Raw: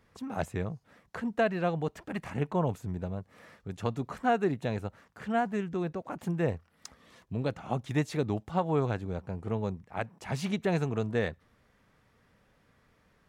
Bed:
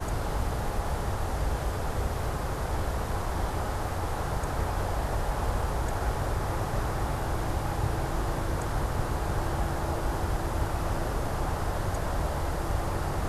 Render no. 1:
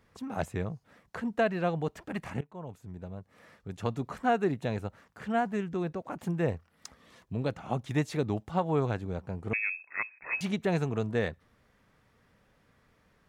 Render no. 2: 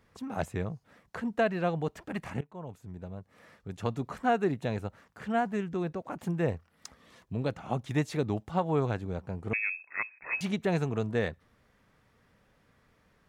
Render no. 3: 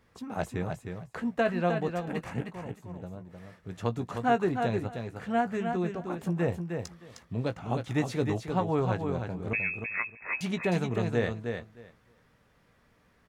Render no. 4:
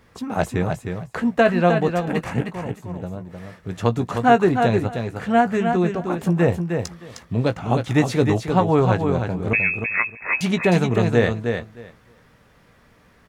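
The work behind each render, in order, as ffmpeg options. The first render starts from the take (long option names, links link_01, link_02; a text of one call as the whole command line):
ffmpeg -i in.wav -filter_complex "[0:a]asettb=1/sr,asplit=3[link_01][link_02][link_03];[link_01]atrim=end=9.534[link_04];[link_02]atrim=start=9.53:end=10.41,asetpts=PTS-STARTPTS,afade=type=in:duration=0.004:curve=qsin,afade=type=out:start_time=0.876:duration=0.004:curve=qsin,lowpass=frequency=2300:width_type=q:width=0.5098,lowpass=frequency=2300:width_type=q:width=0.6013,lowpass=frequency=2300:width_type=q:width=0.9,lowpass=frequency=2300:width_type=q:width=2.563,afreqshift=-2700[link_05];[link_03]atrim=start=10.406[link_06];[link_04][link_05]acrossfade=duration=0.004:curve1=hsin:curve2=qsin[link_07];[link_07][link_06]acrossfade=duration=0.004:curve1=qsin:curve2=hsin,asplit=2[link_08][link_09];[link_08]atrim=end=2.41,asetpts=PTS-STARTPTS,afade=type=out:start_time=2.406:duration=0.004:curve=hsin:silence=0.0794328[link_10];[link_09]atrim=start=2.41,asetpts=PTS-STARTPTS,afade=type=in:duration=1.5:silence=0.0794328[link_11];[link_10][link_11]concat=n=2:v=0:a=1" out.wav
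ffmpeg -i in.wav -af anull out.wav
ffmpeg -i in.wav -filter_complex "[0:a]asplit=2[link_01][link_02];[link_02]adelay=17,volume=-10dB[link_03];[link_01][link_03]amix=inputs=2:normalize=0,asplit=2[link_04][link_05];[link_05]aecho=0:1:309|618|927:0.501|0.0752|0.0113[link_06];[link_04][link_06]amix=inputs=2:normalize=0" out.wav
ffmpeg -i in.wav -af "volume=10.5dB" out.wav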